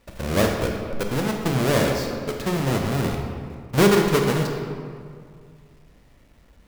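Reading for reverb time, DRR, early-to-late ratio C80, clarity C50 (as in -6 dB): 2.2 s, 1.5 dB, 4.5 dB, 3.0 dB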